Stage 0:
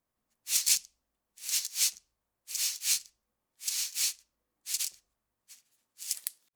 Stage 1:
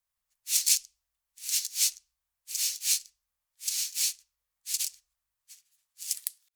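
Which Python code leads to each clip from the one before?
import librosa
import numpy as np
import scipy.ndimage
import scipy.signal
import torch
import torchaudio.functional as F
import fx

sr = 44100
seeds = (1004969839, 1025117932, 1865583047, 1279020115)

y = fx.tone_stack(x, sr, knobs='10-0-10')
y = F.gain(torch.from_numpy(y), 2.5).numpy()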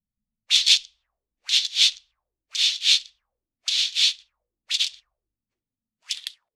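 y = fx.envelope_lowpass(x, sr, base_hz=210.0, top_hz=3500.0, q=5.9, full_db=-33.5, direction='up')
y = F.gain(torch.from_numpy(y), 8.0).numpy()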